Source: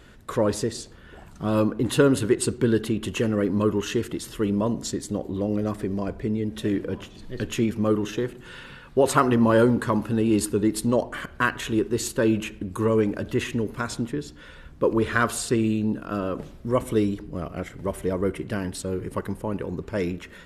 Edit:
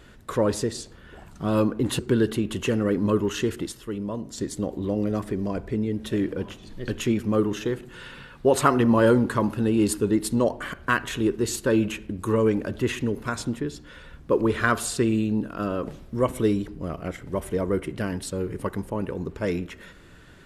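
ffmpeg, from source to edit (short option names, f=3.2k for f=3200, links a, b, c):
-filter_complex "[0:a]asplit=4[a][b][c][d];[a]atrim=end=1.992[e];[b]atrim=start=2.508:end=4.242[f];[c]atrim=start=4.238:end=4.902,asetpts=PTS-STARTPTS,volume=-7dB[g];[d]atrim=start=4.898[h];[e][f]acrossfade=d=0.004:c1=hsin:c2=hsin[i];[i][g]acrossfade=d=0.004:c1=hsin:c2=hsin[j];[j][h]acrossfade=d=0.004:c1=hsin:c2=hsin"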